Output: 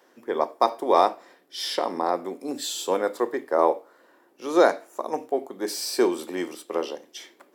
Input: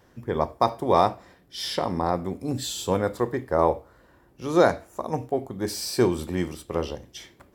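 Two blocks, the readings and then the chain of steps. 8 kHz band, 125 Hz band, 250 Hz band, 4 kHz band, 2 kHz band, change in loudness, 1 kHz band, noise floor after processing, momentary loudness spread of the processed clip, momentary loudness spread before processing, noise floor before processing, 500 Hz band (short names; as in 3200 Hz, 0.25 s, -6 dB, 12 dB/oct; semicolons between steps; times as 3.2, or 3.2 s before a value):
+1.0 dB, under -20 dB, -2.0 dB, +1.0 dB, +1.0 dB, +0.5 dB, +1.0 dB, -60 dBFS, 13 LU, 13 LU, -59 dBFS, +1.0 dB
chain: HPF 290 Hz 24 dB/oct; gain +1 dB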